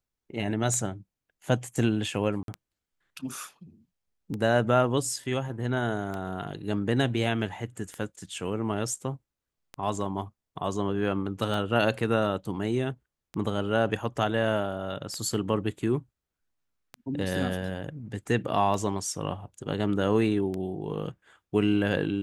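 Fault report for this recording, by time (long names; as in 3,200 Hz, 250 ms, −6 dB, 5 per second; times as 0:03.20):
scratch tick 33 1/3 rpm −21 dBFS
0:02.43–0:02.48: drop-out 52 ms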